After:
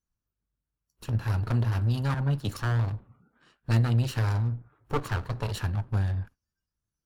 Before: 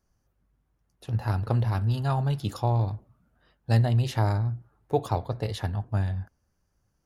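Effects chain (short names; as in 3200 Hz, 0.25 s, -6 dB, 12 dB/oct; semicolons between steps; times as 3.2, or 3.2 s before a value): minimum comb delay 0.7 ms; spectral noise reduction 20 dB; in parallel at +3 dB: compressor, threshold -38 dBFS, peak gain reduction 18.5 dB; 2.14–2.59 on the sum: three-band expander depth 100%; gain -2 dB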